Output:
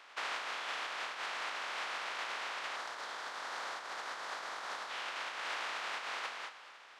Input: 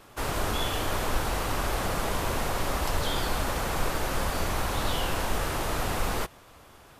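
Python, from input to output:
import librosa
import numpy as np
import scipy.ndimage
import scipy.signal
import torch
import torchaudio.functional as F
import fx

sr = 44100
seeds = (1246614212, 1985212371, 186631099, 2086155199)

y = fx.spec_flatten(x, sr, power=0.27)
y = scipy.signal.sosfilt(scipy.signal.butter(2, 1100.0, 'highpass', fs=sr, output='sos'), y)
y = fx.spacing_loss(y, sr, db_at_10k=36)
y = fx.echo_feedback(y, sr, ms=234, feedback_pct=22, wet_db=-13)
y = fx.over_compress(y, sr, threshold_db=-45.0, ratio=-1.0)
y = fx.peak_eq(y, sr, hz=2600.0, db=-8.0, octaves=0.8, at=(2.76, 4.9))
y = y * 10.0 ** (4.5 / 20.0)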